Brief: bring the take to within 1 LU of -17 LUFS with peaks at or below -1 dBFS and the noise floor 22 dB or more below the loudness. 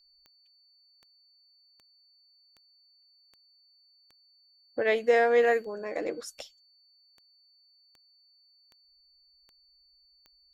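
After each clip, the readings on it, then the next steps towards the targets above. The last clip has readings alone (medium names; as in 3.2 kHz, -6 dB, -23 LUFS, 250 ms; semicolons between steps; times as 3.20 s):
clicks found 14; steady tone 4.5 kHz; tone level -61 dBFS; loudness -27.0 LUFS; peak level -12.0 dBFS; loudness target -17.0 LUFS
-> de-click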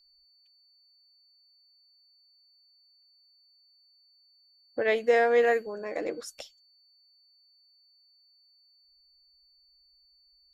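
clicks found 0; steady tone 4.5 kHz; tone level -61 dBFS
-> band-stop 4.5 kHz, Q 30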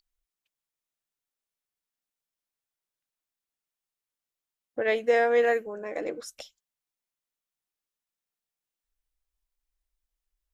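steady tone not found; loudness -26.0 LUFS; peak level -12.0 dBFS; loudness target -17.0 LUFS
-> trim +9 dB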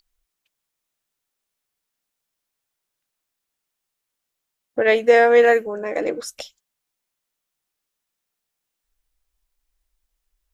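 loudness -17.0 LUFS; peak level -3.0 dBFS; noise floor -81 dBFS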